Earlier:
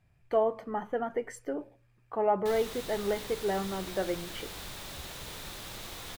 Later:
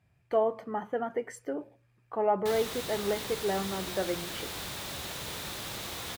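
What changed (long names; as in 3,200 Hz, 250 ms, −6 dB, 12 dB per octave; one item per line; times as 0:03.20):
background +4.5 dB
master: add high-pass filter 70 Hz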